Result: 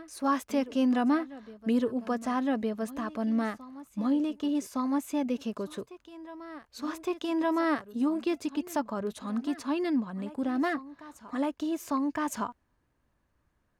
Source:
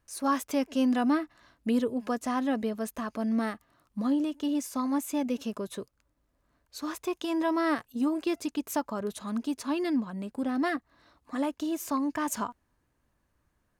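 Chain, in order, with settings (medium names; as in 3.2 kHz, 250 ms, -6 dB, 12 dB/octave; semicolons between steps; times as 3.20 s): treble shelf 6.3 kHz -8.5 dB; on a send: reverse echo 1163 ms -16.5 dB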